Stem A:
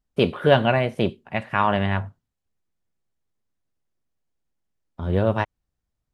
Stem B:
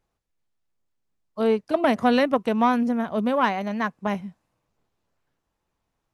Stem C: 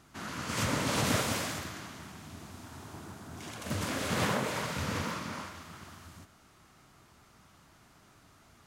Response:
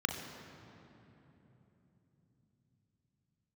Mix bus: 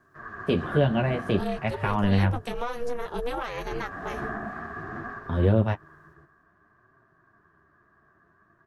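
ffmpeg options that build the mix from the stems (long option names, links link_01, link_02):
-filter_complex "[0:a]dynaudnorm=framelen=210:gausssize=11:maxgain=7.5dB,adelay=300,volume=1.5dB[link_01];[1:a]highshelf=frequency=2800:gain=11.5,bandreject=frequency=520:width=12,volume=1.5dB[link_02];[2:a]firequalizer=gain_entry='entry(180,0);entry(250,-14);entry(450,10);entry(840,-28);entry(1400,13);entry(1900,-14);entry(2900,-20);entry(5200,-23);entry(8100,-29)':delay=0.05:min_phase=1,volume=3dB[link_03];[link_02][link_03]amix=inputs=2:normalize=0,aeval=exprs='val(0)*sin(2*PI*240*n/s)':channel_layout=same,alimiter=limit=-15.5dB:level=0:latency=1:release=98,volume=0dB[link_04];[link_01][link_04]amix=inputs=2:normalize=0,acrossover=split=370[link_05][link_06];[link_06]acompressor=threshold=-25dB:ratio=3[link_07];[link_05][link_07]amix=inputs=2:normalize=0,flanger=delay=7.5:depth=6.6:regen=-25:speed=0.57:shape=sinusoidal"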